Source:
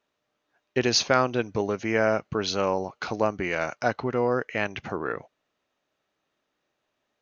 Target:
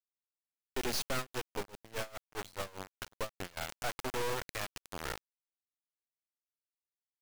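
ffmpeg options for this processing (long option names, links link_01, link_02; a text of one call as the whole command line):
ffmpeg -i in.wav -filter_complex "[0:a]asubboost=boost=3:cutoff=61,aeval=exprs='(tanh(17.8*val(0)+0.65)-tanh(0.65))/17.8':channel_layout=same,acrusher=bits=3:dc=4:mix=0:aa=0.000001,asettb=1/sr,asplit=3[link_01][link_02][link_03];[link_01]atrim=end=1.184[link_04];[link_02]atrim=start=1.18:end=3.57,asetpts=PTS-STARTPTS,afade=type=in:duration=0.004:curve=qsin,afade=type=out:start_time=2.386:duration=0.004:curve=qsin,aeval=exprs='val(0)*pow(10,-23*(0.5-0.5*cos(2*PI*4.9*n/s))/20)':channel_layout=same[link_05];[link_03]atrim=start=3.566[link_06];[link_04][link_05]acrossfade=duration=0.004:curve1=hsin:curve2=qsin[link_07];[link_07][link_06]acrossfade=duration=0.004:curve1=qsin:curve2=hsin,volume=1.5dB" out.wav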